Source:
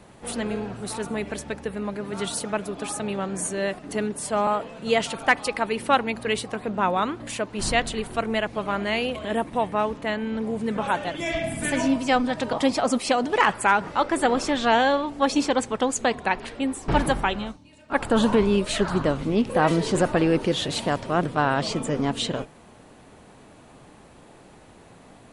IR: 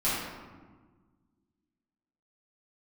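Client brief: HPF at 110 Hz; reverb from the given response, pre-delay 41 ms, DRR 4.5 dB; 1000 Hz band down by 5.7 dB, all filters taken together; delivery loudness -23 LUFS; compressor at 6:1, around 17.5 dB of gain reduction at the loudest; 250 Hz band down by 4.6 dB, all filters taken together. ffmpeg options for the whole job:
-filter_complex "[0:a]highpass=110,equalizer=f=250:t=o:g=-5,equalizer=f=1k:t=o:g=-7.5,acompressor=threshold=-38dB:ratio=6,asplit=2[a][b];[1:a]atrim=start_sample=2205,adelay=41[c];[b][c]afir=irnorm=-1:irlink=0,volume=-15.5dB[d];[a][d]amix=inputs=2:normalize=0,volume=16.5dB"

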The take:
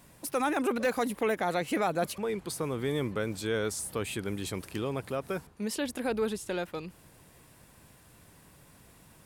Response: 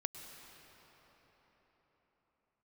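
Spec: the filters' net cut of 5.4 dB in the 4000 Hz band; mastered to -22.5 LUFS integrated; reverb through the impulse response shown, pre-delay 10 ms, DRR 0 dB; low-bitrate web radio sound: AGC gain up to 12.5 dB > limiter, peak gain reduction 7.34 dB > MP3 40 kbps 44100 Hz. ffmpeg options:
-filter_complex "[0:a]equalizer=f=4k:t=o:g=-7,asplit=2[a][b];[1:a]atrim=start_sample=2205,adelay=10[c];[b][c]afir=irnorm=-1:irlink=0,volume=1dB[d];[a][d]amix=inputs=2:normalize=0,dynaudnorm=m=12.5dB,alimiter=limit=-20dB:level=0:latency=1,volume=9.5dB" -ar 44100 -c:a libmp3lame -b:a 40k

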